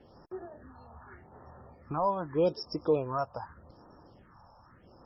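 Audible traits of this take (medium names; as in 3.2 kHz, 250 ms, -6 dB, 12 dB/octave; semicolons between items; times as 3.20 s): phasing stages 4, 0.83 Hz, lowest notch 340–3200 Hz; MP3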